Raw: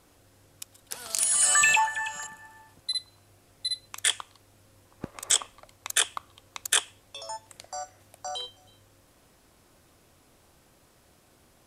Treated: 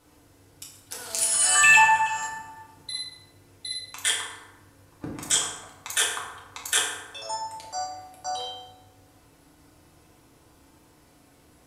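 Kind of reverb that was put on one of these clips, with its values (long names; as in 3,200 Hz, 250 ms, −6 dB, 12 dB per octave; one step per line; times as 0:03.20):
feedback delay network reverb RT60 1.1 s, low-frequency decay 1.25×, high-frequency decay 0.55×, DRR −5 dB
level −3.5 dB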